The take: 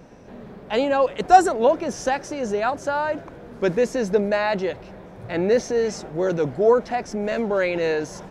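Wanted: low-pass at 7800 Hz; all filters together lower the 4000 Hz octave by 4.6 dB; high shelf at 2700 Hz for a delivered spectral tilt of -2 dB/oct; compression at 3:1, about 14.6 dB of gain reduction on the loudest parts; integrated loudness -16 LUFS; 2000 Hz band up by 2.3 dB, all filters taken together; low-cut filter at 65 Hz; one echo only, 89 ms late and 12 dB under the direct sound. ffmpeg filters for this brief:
-af "highpass=65,lowpass=7.8k,equalizer=f=2k:t=o:g=5.5,highshelf=f=2.7k:g=-3.5,equalizer=f=4k:t=o:g=-5.5,acompressor=threshold=-27dB:ratio=3,aecho=1:1:89:0.251,volume=13.5dB"

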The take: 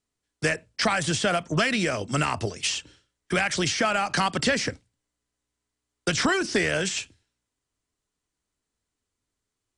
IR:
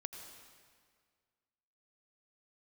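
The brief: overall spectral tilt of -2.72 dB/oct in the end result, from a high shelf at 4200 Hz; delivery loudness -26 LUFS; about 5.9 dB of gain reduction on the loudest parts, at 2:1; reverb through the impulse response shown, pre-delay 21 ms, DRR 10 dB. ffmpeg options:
-filter_complex "[0:a]highshelf=f=4.2k:g=5.5,acompressor=threshold=-29dB:ratio=2,asplit=2[a][b];[1:a]atrim=start_sample=2205,adelay=21[c];[b][c]afir=irnorm=-1:irlink=0,volume=-7.5dB[d];[a][d]amix=inputs=2:normalize=0,volume=2.5dB"

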